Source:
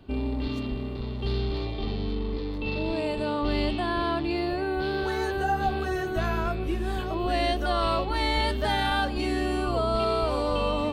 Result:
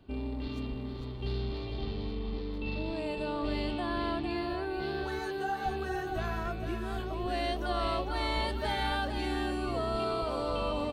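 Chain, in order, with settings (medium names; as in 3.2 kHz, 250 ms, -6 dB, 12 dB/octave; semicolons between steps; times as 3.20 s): 5.19–5.66 s: high-pass 340 Hz 6 dB/octave; delay 452 ms -7 dB; trim -7 dB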